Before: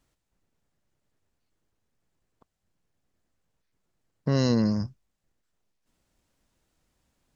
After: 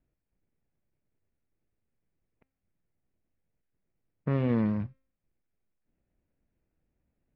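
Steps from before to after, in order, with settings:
running median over 41 samples
transistor ladder low-pass 2,700 Hz, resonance 50%
hum removal 265.7 Hz, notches 27
level +6.5 dB

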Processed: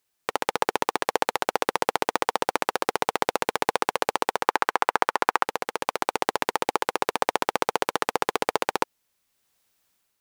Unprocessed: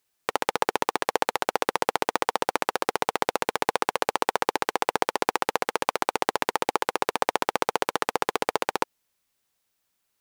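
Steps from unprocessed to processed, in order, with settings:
0:04.44–0:05.47: parametric band 1,300 Hz +10 dB 1.7 octaves
automatic gain control gain up to 7 dB
level −1 dB

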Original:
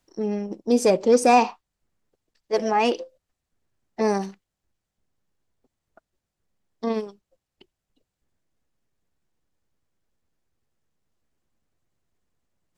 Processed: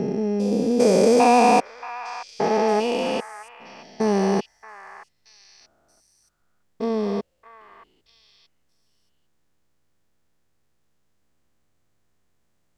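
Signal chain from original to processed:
spectrum averaged block by block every 400 ms
echo through a band-pass that steps 628 ms, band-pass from 1,500 Hz, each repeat 1.4 octaves, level −6 dB
level +8 dB

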